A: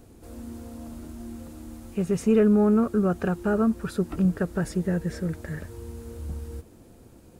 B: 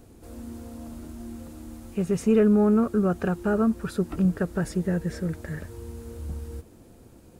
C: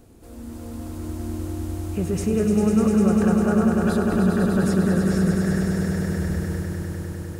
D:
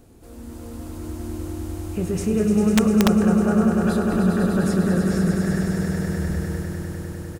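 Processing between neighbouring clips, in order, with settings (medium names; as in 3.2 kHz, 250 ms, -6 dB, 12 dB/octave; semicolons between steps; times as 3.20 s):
no audible change
level rider gain up to 4 dB; peak limiter -17 dBFS, peak gain reduction 10 dB; on a send: echo with a slow build-up 100 ms, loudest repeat 5, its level -6 dB
doubling 28 ms -11 dB; integer overflow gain 8.5 dB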